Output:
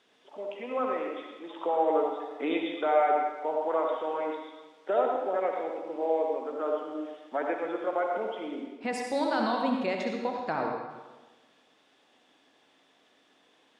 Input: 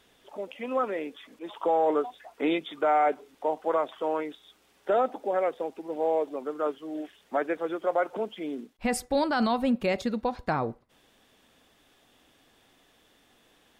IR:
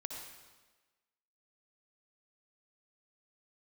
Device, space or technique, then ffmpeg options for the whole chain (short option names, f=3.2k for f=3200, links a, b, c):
supermarket ceiling speaker: -filter_complex "[0:a]highpass=220,lowpass=6.2k[a];[1:a]atrim=start_sample=2205[b];[a][b]afir=irnorm=-1:irlink=0"